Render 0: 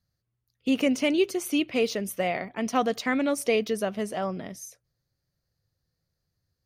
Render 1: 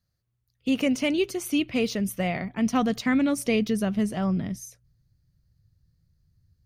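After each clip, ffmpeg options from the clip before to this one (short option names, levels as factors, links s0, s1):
-af "asubboost=boost=8:cutoff=190"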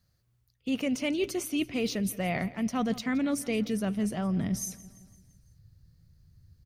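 -af "areverse,acompressor=threshold=0.0178:ratio=4,areverse,aecho=1:1:169|338|507|676|845:0.112|0.0628|0.0352|0.0197|0.011,volume=2.11"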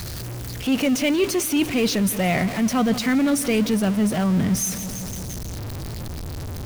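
-af "aeval=exprs='val(0)+0.5*0.0237*sgn(val(0))':c=same,volume=2.24"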